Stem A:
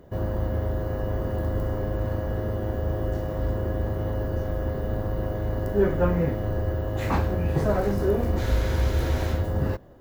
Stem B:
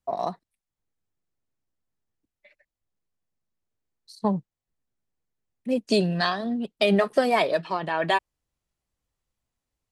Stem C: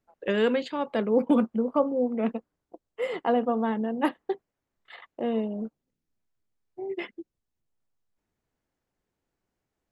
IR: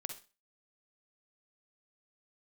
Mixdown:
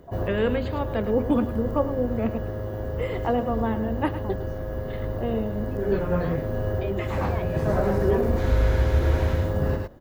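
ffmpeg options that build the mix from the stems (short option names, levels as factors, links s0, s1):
-filter_complex "[0:a]volume=1.06,asplit=2[s0][s1];[s1]volume=0.631[s2];[1:a]lowpass=2100,volume=0.211[s3];[2:a]volume=0.944,asplit=3[s4][s5][s6];[s5]volume=0.251[s7];[s6]apad=whole_len=441248[s8];[s0][s8]sidechaincompress=threshold=0.0141:ratio=8:attack=6.2:release=1400[s9];[s2][s7]amix=inputs=2:normalize=0,aecho=0:1:107:1[s10];[s9][s3][s4][s10]amix=inputs=4:normalize=0,acrossover=split=2900[s11][s12];[s12]acompressor=threshold=0.00447:ratio=4:attack=1:release=60[s13];[s11][s13]amix=inputs=2:normalize=0"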